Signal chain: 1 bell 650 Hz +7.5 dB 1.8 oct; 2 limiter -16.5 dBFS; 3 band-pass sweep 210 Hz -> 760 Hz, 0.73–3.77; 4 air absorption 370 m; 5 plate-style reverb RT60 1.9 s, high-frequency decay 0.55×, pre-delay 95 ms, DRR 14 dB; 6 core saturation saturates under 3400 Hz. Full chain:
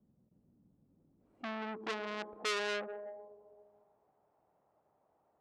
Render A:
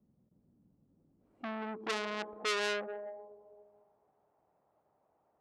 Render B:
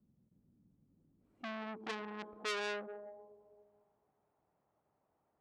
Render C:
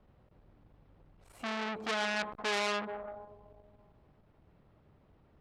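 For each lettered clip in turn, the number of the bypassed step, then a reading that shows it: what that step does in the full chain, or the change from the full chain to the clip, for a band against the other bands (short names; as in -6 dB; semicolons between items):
2, loudness change +2.0 LU; 1, loudness change -3.0 LU; 3, crest factor change -1.5 dB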